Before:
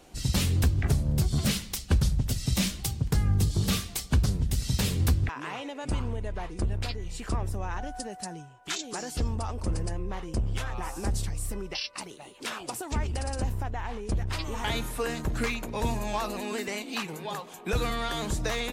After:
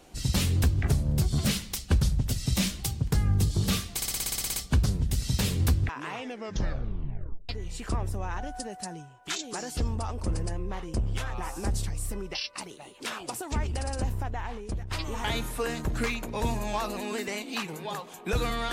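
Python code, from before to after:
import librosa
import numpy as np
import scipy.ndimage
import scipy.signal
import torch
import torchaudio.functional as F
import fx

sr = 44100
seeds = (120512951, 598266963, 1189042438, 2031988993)

y = fx.edit(x, sr, fx.stutter(start_s=3.96, slice_s=0.06, count=11),
    fx.tape_stop(start_s=5.52, length_s=1.37),
    fx.fade_out_to(start_s=13.8, length_s=0.51, floor_db=-8.5), tone=tone)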